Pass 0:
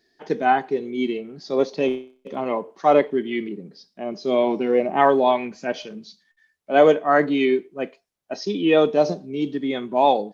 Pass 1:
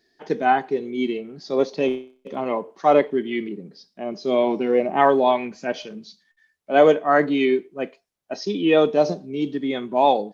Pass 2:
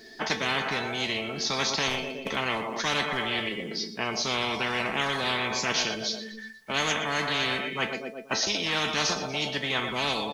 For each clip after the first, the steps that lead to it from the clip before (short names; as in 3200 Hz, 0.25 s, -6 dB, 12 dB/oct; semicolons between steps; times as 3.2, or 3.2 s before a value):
nothing audible
resonator 220 Hz, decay 0.15 s, harmonics all, mix 80%; feedback echo 0.12 s, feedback 49%, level -18 dB; spectral compressor 10:1